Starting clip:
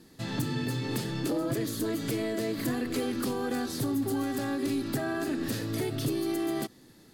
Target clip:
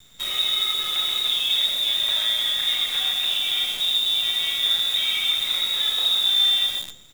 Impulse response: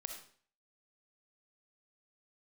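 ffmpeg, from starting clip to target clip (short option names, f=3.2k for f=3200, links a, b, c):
-filter_complex "[0:a]lowpass=f=3.3k:t=q:w=0.5098,lowpass=f=3.3k:t=q:w=0.6013,lowpass=f=3.3k:t=q:w=0.9,lowpass=f=3.3k:t=q:w=2.563,afreqshift=-3900,equalizer=f=590:w=1.5:g=4,asplit=2[a][b];[b]aecho=0:1:131|262|393|524:0.501|0.14|0.0393|0.011[c];[a][c]amix=inputs=2:normalize=0[d];[1:a]atrim=start_sample=2205,atrim=end_sample=6615[e];[d][e]afir=irnorm=-1:irlink=0,asplit=2[f][g];[g]acrusher=bits=3:mode=log:mix=0:aa=0.000001,volume=-4.5dB[h];[f][h]amix=inputs=2:normalize=0,acontrast=43,equalizer=f=120:w=0.31:g=-11.5,acrusher=bits=6:dc=4:mix=0:aa=0.000001"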